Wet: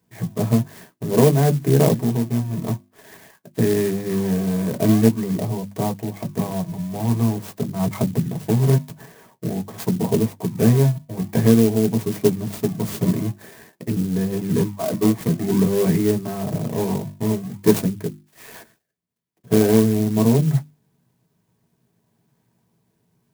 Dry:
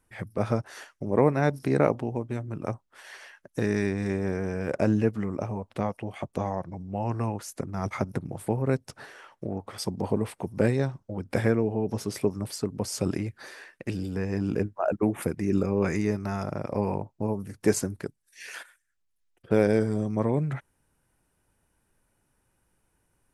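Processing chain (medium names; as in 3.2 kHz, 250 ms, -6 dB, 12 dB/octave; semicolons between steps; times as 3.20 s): high-pass 100 Hz; tone controls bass +9 dB, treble +5 dB; hum notches 50/100/150/200/250/300/350 Hz; in parallel at -7 dB: decimation with a swept rate 31×, swing 160% 0.48 Hz; on the sum: comb of notches 1.4 kHz; on a send at -3.5 dB: reverberation, pre-delay 3 ms; on the sum: sampling jitter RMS 0.066 ms; trim -1.5 dB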